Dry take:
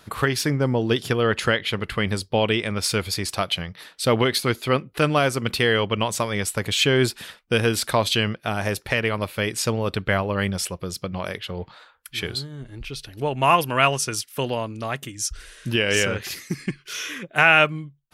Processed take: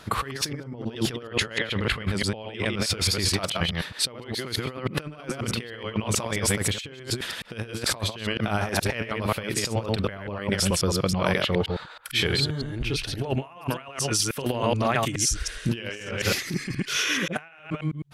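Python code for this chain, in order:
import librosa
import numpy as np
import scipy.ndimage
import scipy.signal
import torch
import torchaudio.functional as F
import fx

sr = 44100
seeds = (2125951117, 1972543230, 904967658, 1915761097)

y = fx.reverse_delay(x, sr, ms=106, wet_db=-2.5)
y = fx.high_shelf(y, sr, hz=10000.0, db=-9.0)
y = fx.over_compress(y, sr, threshold_db=-27.0, ratio=-0.5)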